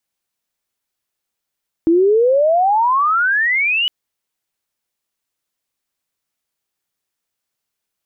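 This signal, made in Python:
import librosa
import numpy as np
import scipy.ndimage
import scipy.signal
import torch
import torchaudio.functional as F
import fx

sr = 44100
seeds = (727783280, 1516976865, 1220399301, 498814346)

y = fx.chirp(sr, length_s=2.01, from_hz=320.0, to_hz=3000.0, law='logarithmic', from_db=-9.0, to_db=-14.0)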